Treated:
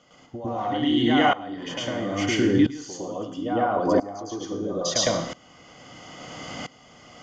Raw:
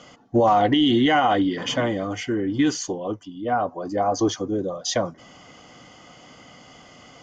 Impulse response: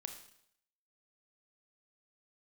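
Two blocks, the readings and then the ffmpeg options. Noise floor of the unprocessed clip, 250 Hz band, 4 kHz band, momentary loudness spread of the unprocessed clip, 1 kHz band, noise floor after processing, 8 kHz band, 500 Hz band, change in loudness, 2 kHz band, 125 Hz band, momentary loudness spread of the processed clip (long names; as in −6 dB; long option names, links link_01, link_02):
−49 dBFS, −1.5 dB, −1.0 dB, 10 LU, −4.5 dB, −53 dBFS, can't be measured, −2.5 dB, −2.0 dB, −1.0 dB, −1.5 dB, 19 LU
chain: -filter_complex "[0:a]acompressor=threshold=-27dB:ratio=12,asplit=2[link_01][link_02];[1:a]atrim=start_sample=2205,asetrate=48510,aresample=44100,adelay=108[link_03];[link_02][link_03]afir=irnorm=-1:irlink=0,volume=8.5dB[link_04];[link_01][link_04]amix=inputs=2:normalize=0,aeval=exprs='val(0)*pow(10,-20*if(lt(mod(-0.75*n/s,1),2*abs(-0.75)/1000),1-mod(-0.75*n/s,1)/(2*abs(-0.75)/1000),(mod(-0.75*n/s,1)-2*abs(-0.75)/1000)/(1-2*abs(-0.75)/1000))/20)':channel_layout=same,volume=7.5dB"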